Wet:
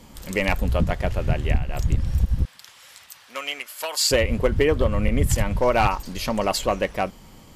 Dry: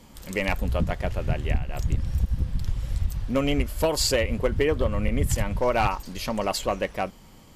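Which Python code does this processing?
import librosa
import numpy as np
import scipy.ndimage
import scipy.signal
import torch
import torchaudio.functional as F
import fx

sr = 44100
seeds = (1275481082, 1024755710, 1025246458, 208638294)

y = fx.highpass(x, sr, hz=1200.0, slope=12, at=(2.45, 4.11))
y = y * librosa.db_to_amplitude(3.5)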